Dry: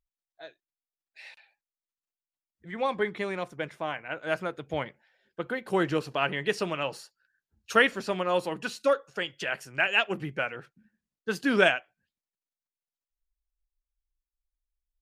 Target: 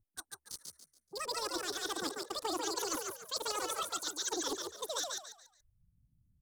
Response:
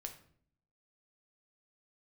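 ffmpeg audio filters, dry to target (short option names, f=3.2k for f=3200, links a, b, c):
-filter_complex "[0:a]acrossover=split=700|4500[a][b][c];[b]acrusher=bits=6:mix=0:aa=0.000001[d];[a][d][c]amix=inputs=3:normalize=0,equalizer=f=125:t=o:w=1:g=8,equalizer=f=1k:t=o:w=1:g=-8,equalizer=f=2k:t=o:w=1:g=7,equalizer=f=4k:t=o:w=1:g=10,areverse,acompressor=threshold=-36dB:ratio=6,areverse,asetrate=103194,aresample=44100,lowshelf=f=220:g=12,asplit=5[e][f][g][h][i];[f]adelay=142,afreqshift=70,volume=-3dB[j];[g]adelay=284,afreqshift=140,volume=-12.9dB[k];[h]adelay=426,afreqshift=210,volume=-22.8dB[l];[i]adelay=568,afreqshift=280,volume=-32.7dB[m];[e][j][k][l][m]amix=inputs=5:normalize=0"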